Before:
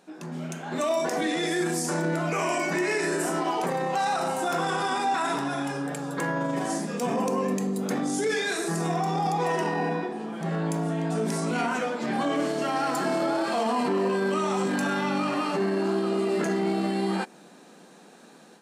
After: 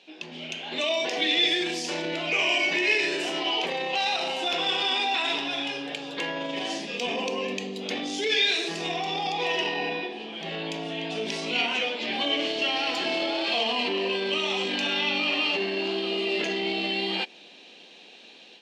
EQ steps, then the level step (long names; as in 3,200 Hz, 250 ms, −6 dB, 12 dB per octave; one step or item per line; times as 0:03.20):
high-pass filter 340 Hz 12 dB per octave
high-frequency loss of the air 240 metres
high shelf with overshoot 2,000 Hz +13 dB, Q 3
0.0 dB